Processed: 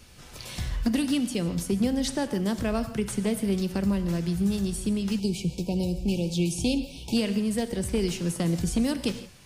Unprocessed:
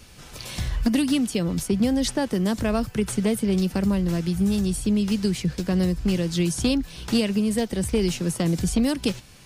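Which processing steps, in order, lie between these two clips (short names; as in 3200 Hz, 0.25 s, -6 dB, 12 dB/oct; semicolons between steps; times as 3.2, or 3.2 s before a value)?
non-linear reverb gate 0.19 s flat, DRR 10 dB; spectral delete 5.19–7.17, 990–2200 Hz; gain -4 dB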